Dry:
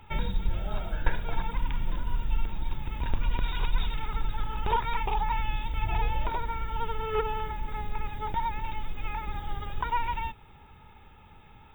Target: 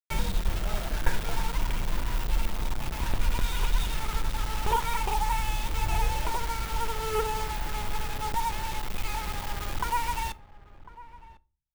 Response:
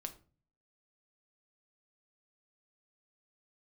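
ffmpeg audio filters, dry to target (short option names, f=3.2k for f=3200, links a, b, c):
-filter_complex "[0:a]acrusher=bits=5:mix=0:aa=0.000001,asplit=2[a][b];[b]adelay=1050,volume=-17dB,highshelf=f=4k:g=-23.6[c];[a][c]amix=inputs=2:normalize=0,asplit=2[d][e];[1:a]atrim=start_sample=2205[f];[e][f]afir=irnorm=-1:irlink=0,volume=-6dB[g];[d][g]amix=inputs=2:normalize=0,volume=-2dB"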